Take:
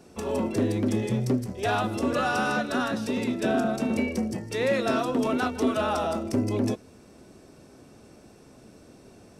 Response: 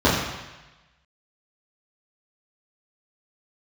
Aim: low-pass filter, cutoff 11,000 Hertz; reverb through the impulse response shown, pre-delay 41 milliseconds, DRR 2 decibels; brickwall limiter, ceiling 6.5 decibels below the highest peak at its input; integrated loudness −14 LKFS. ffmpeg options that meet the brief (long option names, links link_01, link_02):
-filter_complex "[0:a]lowpass=11000,alimiter=limit=-19.5dB:level=0:latency=1,asplit=2[link_01][link_02];[1:a]atrim=start_sample=2205,adelay=41[link_03];[link_02][link_03]afir=irnorm=-1:irlink=0,volume=-24dB[link_04];[link_01][link_04]amix=inputs=2:normalize=0,volume=9.5dB"